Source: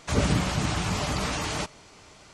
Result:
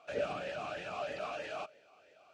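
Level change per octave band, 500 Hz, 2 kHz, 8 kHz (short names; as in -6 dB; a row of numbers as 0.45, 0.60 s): -4.0, -10.5, -26.0 dB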